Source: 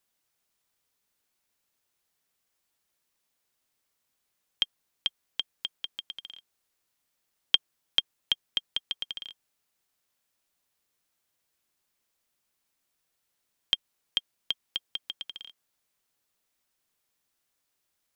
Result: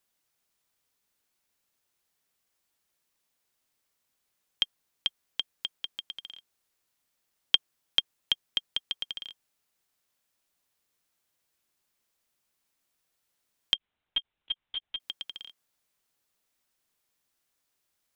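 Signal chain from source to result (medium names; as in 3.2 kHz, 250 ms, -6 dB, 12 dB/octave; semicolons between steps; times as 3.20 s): 13.74–15.00 s: LPC vocoder at 8 kHz pitch kept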